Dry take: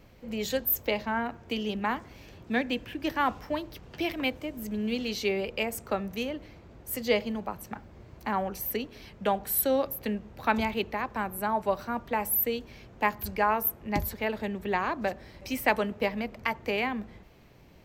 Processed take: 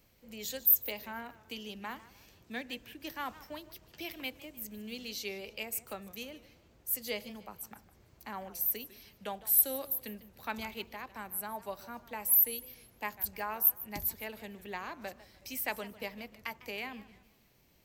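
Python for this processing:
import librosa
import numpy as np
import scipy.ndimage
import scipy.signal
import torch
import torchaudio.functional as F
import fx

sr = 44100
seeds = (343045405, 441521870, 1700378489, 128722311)

y = librosa.effects.preemphasis(x, coef=0.8, zi=[0.0])
y = fx.echo_warbled(y, sr, ms=152, feedback_pct=35, rate_hz=2.8, cents=164, wet_db=-17)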